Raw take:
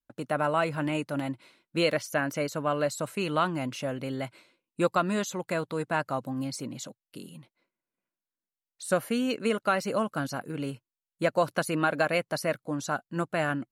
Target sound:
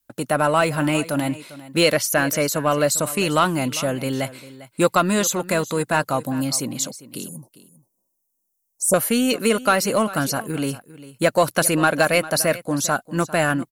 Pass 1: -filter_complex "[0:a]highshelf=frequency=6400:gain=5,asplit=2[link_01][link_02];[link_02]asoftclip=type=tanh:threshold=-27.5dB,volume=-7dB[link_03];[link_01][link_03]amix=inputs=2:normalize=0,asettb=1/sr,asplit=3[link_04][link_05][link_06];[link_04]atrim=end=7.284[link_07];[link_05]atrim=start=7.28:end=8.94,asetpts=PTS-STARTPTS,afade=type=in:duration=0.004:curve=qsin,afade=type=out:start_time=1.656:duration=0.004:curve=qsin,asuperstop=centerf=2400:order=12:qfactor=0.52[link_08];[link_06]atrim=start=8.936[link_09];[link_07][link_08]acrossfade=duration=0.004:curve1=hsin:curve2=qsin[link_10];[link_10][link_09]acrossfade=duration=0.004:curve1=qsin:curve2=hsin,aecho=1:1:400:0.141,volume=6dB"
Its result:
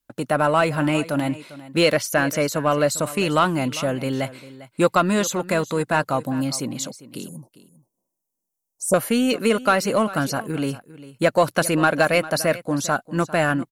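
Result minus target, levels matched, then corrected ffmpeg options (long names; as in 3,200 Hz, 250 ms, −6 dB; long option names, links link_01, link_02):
8,000 Hz band −5.0 dB
-filter_complex "[0:a]highshelf=frequency=6400:gain=15,asplit=2[link_01][link_02];[link_02]asoftclip=type=tanh:threshold=-27.5dB,volume=-7dB[link_03];[link_01][link_03]amix=inputs=2:normalize=0,asettb=1/sr,asplit=3[link_04][link_05][link_06];[link_04]atrim=end=7.284[link_07];[link_05]atrim=start=7.28:end=8.94,asetpts=PTS-STARTPTS,afade=type=in:duration=0.004:curve=qsin,afade=type=out:start_time=1.656:duration=0.004:curve=qsin,asuperstop=centerf=2400:order=12:qfactor=0.52[link_08];[link_06]atrim=start=8.936[link_09];[link_07][link_08]acrossfade=duration=0.004:curve1=hsin:curve2=qsin[link_10];[link_10][link_09]acrossfade=duration=0.004:curve1=qsin:curve2=hsin,aecho=1:1:400:0.141,volume=6dB"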